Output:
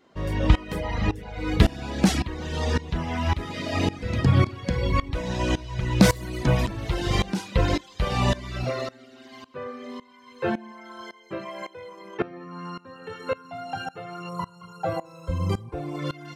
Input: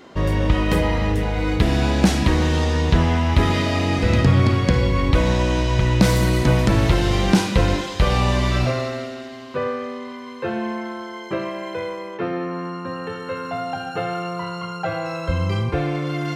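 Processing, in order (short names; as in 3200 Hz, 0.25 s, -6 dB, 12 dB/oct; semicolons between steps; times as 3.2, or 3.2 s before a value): reverb removal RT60 1.2 s; 14.29–15.99 EQ curve 1100 Hz 0 dB, 1700 Hz -10 dB, 5600 Hz -3 dB, 8500 Hz +4 dB; dB-ramp tremolo swelling 1.8 Hz, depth 20 dB; gain +3.5 dB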